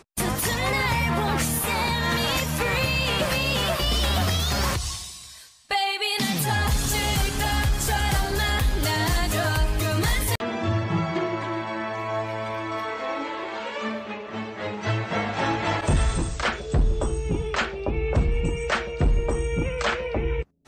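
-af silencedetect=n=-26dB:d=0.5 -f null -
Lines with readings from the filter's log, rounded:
silence_start: 5.02
silence_end: 5.71 | silence_duration: 0.69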